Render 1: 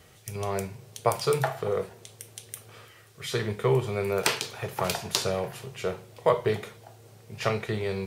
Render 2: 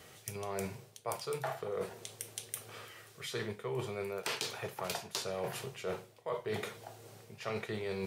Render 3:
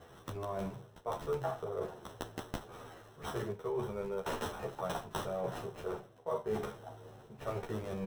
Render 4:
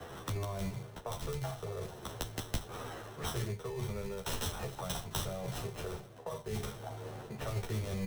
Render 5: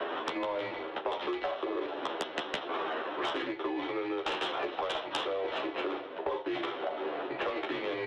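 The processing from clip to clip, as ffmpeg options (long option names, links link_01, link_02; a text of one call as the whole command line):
ffmpeg -i in.wav -af "highpass=frequency=190:poles=1,areverse,acompressor=threshold=-35dB:ratio=12,areverse,volume=1dB" out.wav
ffmpeg -i in.wav -filter_complex "[0:a]acrossover=split=1700[link_01][link_02];[link_02]acrusher=samples=19:mix=1:aa=0.000001[link_03];[link_01][link_03]amix=inputs=2:normalize=0,asplit=2[link_04][link_05];[link_05]adelay=11.6,afreqshift=-1.5[link_06];[link_04][link_06]amix=inputs=2:normalize=1,volume=4dB" out.wav
ffmpeg -i in.wav -filter_complex "[0:a]acrossover=split=140|3000[link_01][link_02][link_03];[link_02]acompressor=threshold=-49dB:ratio=10[link_04];[link_01][link_04][link_03]amix=inputs=3:normalize=0,acrossover=split=340|600|7900[link_05][link_06][link_07][link_08];[link_05]acrusher=samples=20:mix=1:aa=0.000001[link_09];[link_09][link_06][link_07][link_08]amix=inputs=4:normalize=0,volume=9.5dB" out.wav
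ffmpeg -i in.wav -af "highpass=frequency=430:width_type=q:width=0.5412,highpass=frequency=430:width_type=q:width=1.307,lowpass=frequency=3500:width_type=q:width=0.5176,lowpass=frequency=3500:width_type=q:width=0.7071,lowpass=frequency=3500:width_type=q:width=1.932,afreqshift=-79,aeval=exprs='0.0596*sin(PI/2*2.51*val(0)/0.0596)':channel_layout=same,acompressor=threshold=-39dB:ratio=2.5,volume=5.5dB" out.wav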